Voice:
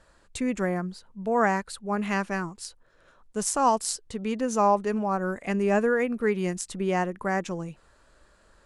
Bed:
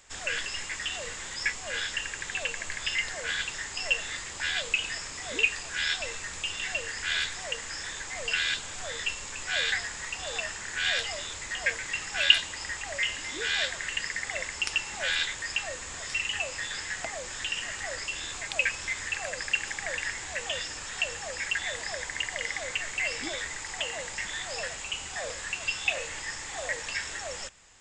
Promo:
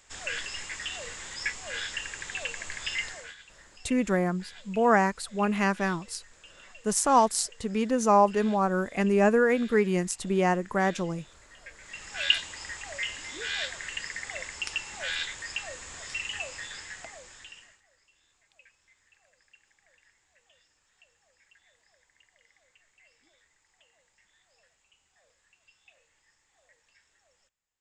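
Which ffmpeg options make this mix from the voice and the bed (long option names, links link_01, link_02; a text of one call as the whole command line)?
ffmpeg -i stem1.wav -i stem2.wav -filter_complex "[0:a]adelay=3500,volume=1.5dB[link_01];[1:a]volume=13.5dB,afade=type=out:start_time=3.04:duration=0.31:silence=0.133352,afade=type=in:start_time=11.73:duration=0.55:silence=0.158489,afade=type=out:start_time=16.44:duration=1.38:silence=0.0375837[link_02];[link_01][link_02]amix=inputs=2:normalize=0" out.wav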